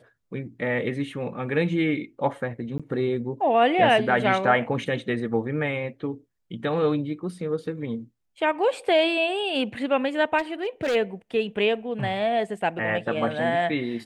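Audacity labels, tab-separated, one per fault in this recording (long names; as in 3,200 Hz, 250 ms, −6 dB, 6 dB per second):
2.780000	2.800000	drop-out 16 ms
10.380000	10.960000	clipping −21.5 dBFS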